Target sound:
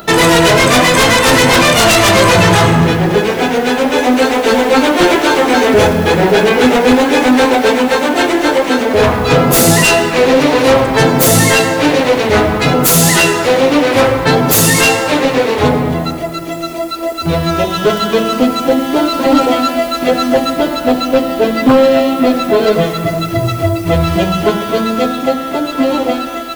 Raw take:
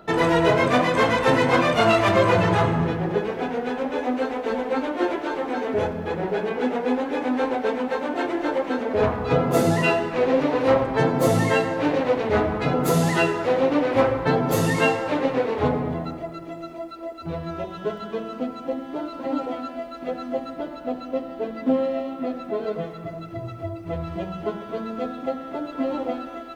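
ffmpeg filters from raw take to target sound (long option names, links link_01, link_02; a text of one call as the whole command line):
ffmpeg -i in.wav -af "crystalizer=i=8:c=0,dynaudnorm=framelen=190:gausssize=21:maxgain=5dB,aeval=exprs='0.944*sin(PI/2*3.55*val(0)/0.944)':channel_layout=same,lowshelf=frequency=490:gain=5,volume=-5.5dB" out.wav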